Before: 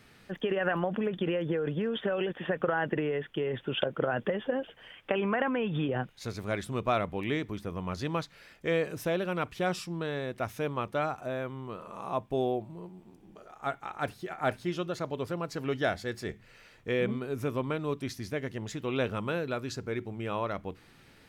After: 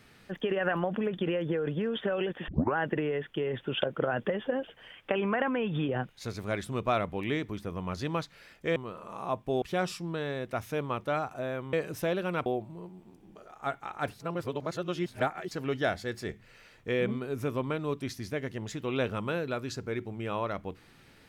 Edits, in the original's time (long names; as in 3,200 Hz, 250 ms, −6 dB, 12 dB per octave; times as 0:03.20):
0:02.48: tape start 0.28 s
0:08.76–0:09.49: swap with 0:11.60–0:12.46
0:14.20–0:15.51: reverse